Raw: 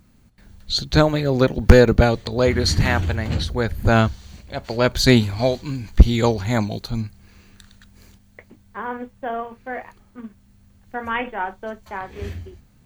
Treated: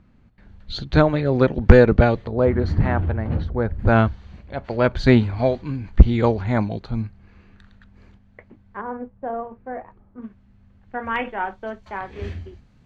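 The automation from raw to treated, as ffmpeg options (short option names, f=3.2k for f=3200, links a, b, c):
-af "asetnsamples=n=441:p=0,asendcmd='2.26 lowpass f 1200;3.79 lowpass f 2100;8.81 lowpass f 1000;10.22 lowpass f 2400;11.16 lowpass f 4400',lowpass=2.5k"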